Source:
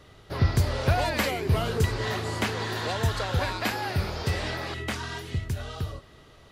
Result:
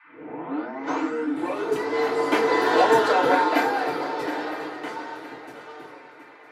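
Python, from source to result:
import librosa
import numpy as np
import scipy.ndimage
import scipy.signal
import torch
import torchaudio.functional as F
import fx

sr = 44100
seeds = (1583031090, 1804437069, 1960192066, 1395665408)

y = fx.tape_start_head(x, sr, length_s=1.95)
y = fx.doppler_pass(y, sr, speed_mps=15, closest_m=7.0, pass_at_s=2.9)
y = scipy.signal.sosfilt(scipy.signal.butter(4, 270.0, 'highpass', fs=sr, output='sos'), y)
y = fx.high_shelf(y, sr, hz=2400.0, db=-10.5)
y = fx.dmg_noise_band(y, sr, seeds[0], low_hz=980.0, high_hz=2400.0, level_db=-66.0)
y = fx.echo_swing(y, sr, ms=960, ratio=3, feedback_pct=32, wet_db=-13)
y = fx.rev_fdn(y, sr, rt60_s=0.33, lf_ratio=0.75, hf_ratio=0.5, size_ms=20.0, drr_db=-8.5)
y = y * librosa.db_to_amplitude(4.5)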